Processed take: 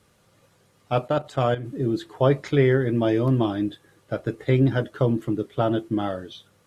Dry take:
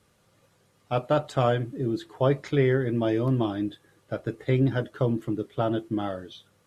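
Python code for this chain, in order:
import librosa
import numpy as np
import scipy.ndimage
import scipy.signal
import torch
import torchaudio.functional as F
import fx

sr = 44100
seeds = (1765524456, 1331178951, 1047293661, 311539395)

y = fx.level_steps(x, sr, step_db=12, at=(1.08, 1.66))
y = F.gain(torch.from_numpy(y), 3.5).numpy()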